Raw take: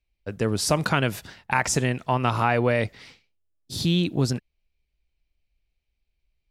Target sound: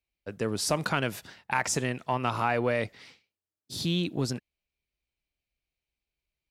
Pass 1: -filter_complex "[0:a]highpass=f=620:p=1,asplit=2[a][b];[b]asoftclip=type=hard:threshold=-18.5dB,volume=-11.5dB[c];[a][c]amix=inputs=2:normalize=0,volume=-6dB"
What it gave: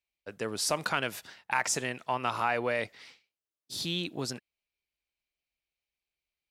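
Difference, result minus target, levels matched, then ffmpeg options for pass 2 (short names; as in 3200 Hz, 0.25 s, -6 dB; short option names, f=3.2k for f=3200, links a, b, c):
125 Hz band -7.5 dB
-filter_complex "[0:a]highpass=f=160:p=1,asplit=2[a][b];[b]asoftclip=type=hard:threshold=-18.5dB,volume=-11.5dB[c];[a][c]amix=inputs=2:normalize=0,volume=-6dB"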